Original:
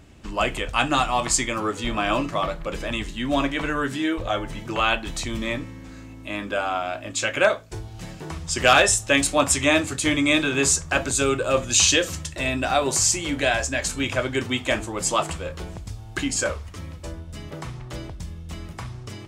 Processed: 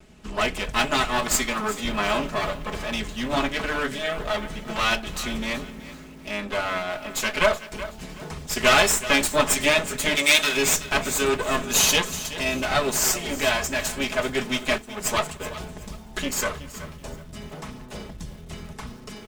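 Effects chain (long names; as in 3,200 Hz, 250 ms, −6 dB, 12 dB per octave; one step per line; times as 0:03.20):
lower of the sound and its delayed copy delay 4.7 ms
0:10.15–0:10.57: spectral tilt +3 dB per octave
0:14.78–0:15.40: downward expander −25 dBFS
far-end echo of a speakerphone 220 ms, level −27 dB
feedback echo at a low word length 375 ms, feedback 35%, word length 7 bits, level −14 dB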